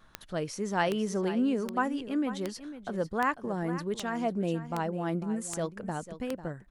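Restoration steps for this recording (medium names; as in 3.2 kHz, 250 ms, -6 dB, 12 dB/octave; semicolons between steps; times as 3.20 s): de-click; inverse comb 497 ms -13 dB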